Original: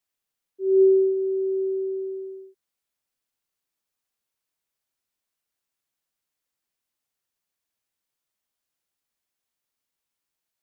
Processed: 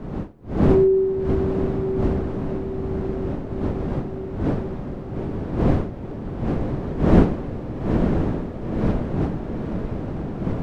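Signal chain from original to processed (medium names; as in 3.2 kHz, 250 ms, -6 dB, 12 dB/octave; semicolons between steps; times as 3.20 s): wind noise 290 Hz -25 dBFS; echo that smears into a reverb 951 ms, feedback 65%, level -5 dB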